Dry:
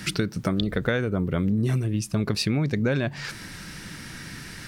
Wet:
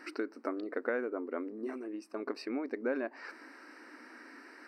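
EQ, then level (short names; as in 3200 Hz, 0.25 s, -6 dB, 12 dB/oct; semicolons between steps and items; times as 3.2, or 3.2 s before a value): running mean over 13 samples; brick-wall FIR high-pass 240 Hz; bell 1100 Hz +2 dB; -6.5 dB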